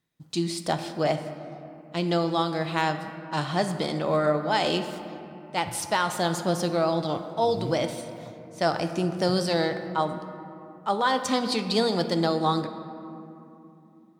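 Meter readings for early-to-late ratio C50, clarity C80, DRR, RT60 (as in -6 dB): 9.0 dB, 10.0 dB, 7.5 dB, 2.9 s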